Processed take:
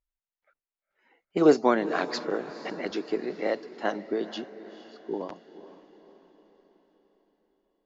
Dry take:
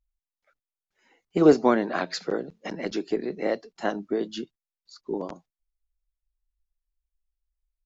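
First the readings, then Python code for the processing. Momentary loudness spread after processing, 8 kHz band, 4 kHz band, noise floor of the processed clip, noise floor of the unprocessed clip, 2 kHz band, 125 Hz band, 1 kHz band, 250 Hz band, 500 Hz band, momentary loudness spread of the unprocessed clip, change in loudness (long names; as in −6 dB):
20 LU, can't be measured, −1.0 dB, below −85 dBFS, below −85 dBFS, 0.0 dB, −6.0 dB, 0.0 dB, −3.0 dB, −1.5 dB, 18 LU, −2.0 dB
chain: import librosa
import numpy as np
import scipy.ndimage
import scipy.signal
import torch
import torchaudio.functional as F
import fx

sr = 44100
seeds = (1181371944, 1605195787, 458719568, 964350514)

p1 = fx.env_lowpass(x, sr, base_hz=2400.0, full_db=-19.5)
p2 = fx.low_shelf(p1, sr, hz=180.0, db=-11.0)
y = p2 + fx.echo_diffused(p2, sr, ms=470, feedback_pct=50, wet_db=-14.5, dry=0)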